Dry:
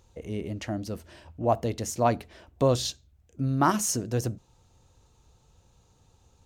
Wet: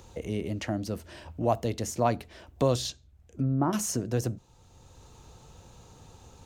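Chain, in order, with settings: 2.89–3.73 treble ducked by the level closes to 700 Hz, closed at -22.5 dBFS; three-band squash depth 40%

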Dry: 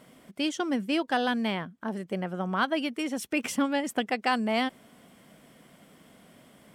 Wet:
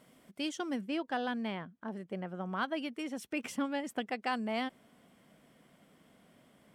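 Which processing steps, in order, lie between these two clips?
high shelf 4500 Hz +2 dB, from 0.81 s -9.5 dB, from 2.46 s -4 dB; gain -7.5 dB

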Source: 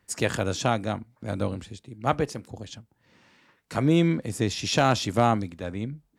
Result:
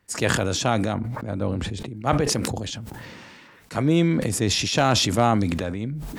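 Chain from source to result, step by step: 0.94–1.97 high shelf 2500 Hz -11 dB; sustainer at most 23 dB/s; gain +1 dB

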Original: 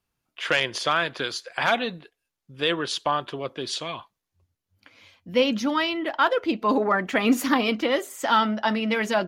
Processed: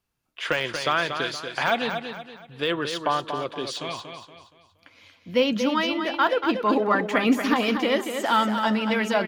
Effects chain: de-esser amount 70%; feedback echo 0.235 s, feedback 37%, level -7.5 dB

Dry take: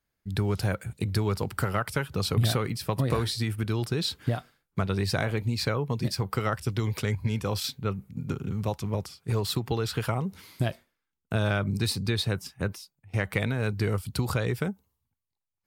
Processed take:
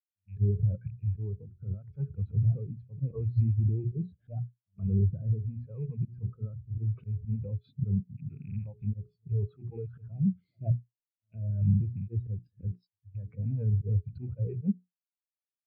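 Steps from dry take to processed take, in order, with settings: rattling part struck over -30 dBFS, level -17 dBFS; treble ducked by the level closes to 1000 Hz, closed at -23.5 dBFS; resonant high shelf 6400 Hz -13 dB, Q 1.5; notches 60/120/180/240/300/360/420 Hz; auto swell 0.145 s; in parallel at +3 dB: compressor, threshold -35 dBFS, peak gain reduction 12 dB; on the sum: limiter -24 dBFS, peak gain reduction 12 dB; rotary speaker horn 0.8 Hz, later 6.7 Hz, at 10.94; pre-echo 0.118 s -18.5 dB; spectral expander 2.5:1; gain +6.5 dB

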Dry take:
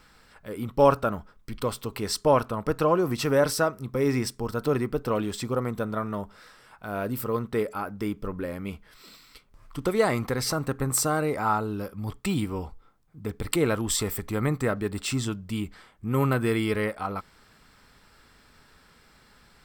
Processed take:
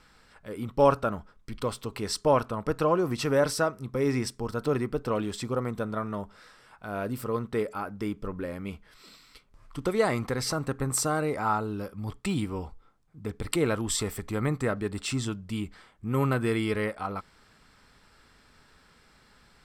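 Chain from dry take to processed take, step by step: LPF 11000 Hz 12 dB/oct; gain -2 dB

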